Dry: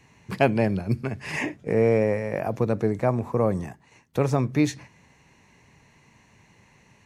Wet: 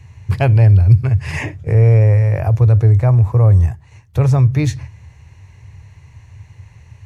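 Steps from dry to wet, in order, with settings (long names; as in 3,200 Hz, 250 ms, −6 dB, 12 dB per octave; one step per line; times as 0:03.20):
low shelf with overshoot 150 Hz +12.5 dB, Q 3
in parallel at −1 dB: brickwall limiter −13.5 dBFS, peak gain reduction 11.5 dB
on the sum: parametric band 80 Hz +7 dB 0.36 octaves
level −1.5 dB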